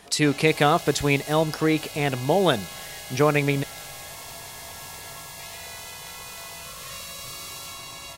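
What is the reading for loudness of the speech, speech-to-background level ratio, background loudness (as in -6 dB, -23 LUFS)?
-22.5 LUFS, 14.0 dB, -36.5 LUFS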